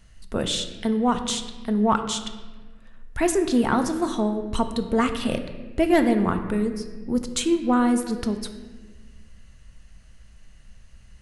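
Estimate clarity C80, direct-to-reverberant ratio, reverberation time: 10.5 dB, 7.0 dB, 1.4 s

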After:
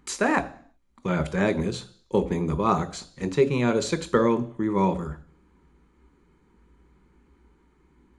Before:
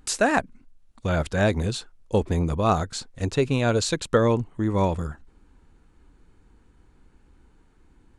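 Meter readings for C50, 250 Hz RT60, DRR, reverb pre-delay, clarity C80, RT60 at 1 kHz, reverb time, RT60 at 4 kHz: 17.5 dB, 0.55 s, 9.5 dB, 3 ms, 20.5 dB, 0.55 s, 0.55 s, 0.65 s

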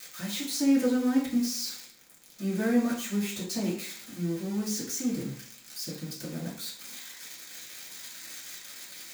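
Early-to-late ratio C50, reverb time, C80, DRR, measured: 6.0 dB, 0.50 s, 9.5 dB, -7.5 dB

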